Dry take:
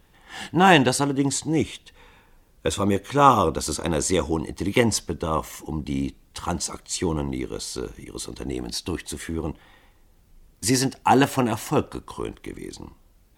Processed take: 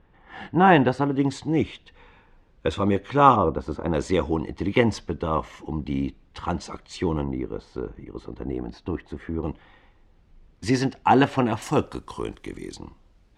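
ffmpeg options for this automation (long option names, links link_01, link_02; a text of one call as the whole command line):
ffmpeg -i in.wav -af "asetnsamples=nb_out_samples=441:pad=0,asendcmd='1.12 lowpass f 3100;3.36 lowpass f 1300;3.94 lowpass f 3000;7.24 lowpass f 1400;9.43 lowpass f 3300;11.62 lowpass f 8100;12.78 lowpass f 4500',lowpass=1800" out.wav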